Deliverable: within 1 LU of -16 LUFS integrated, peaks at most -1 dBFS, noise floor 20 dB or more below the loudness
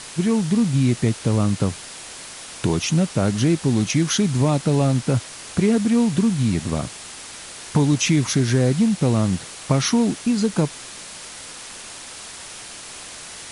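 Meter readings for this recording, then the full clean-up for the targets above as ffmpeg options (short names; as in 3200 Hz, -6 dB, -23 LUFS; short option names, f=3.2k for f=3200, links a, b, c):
noise floor -38 dBFS; noise floor target -41 dBFS; loudness -20.5 LUFS; peak -8.0 dBFS; loudness target -16.0 LUFS
-> -af "afftdn=nr=6:nf=-38"
-af "volume=4.5dB"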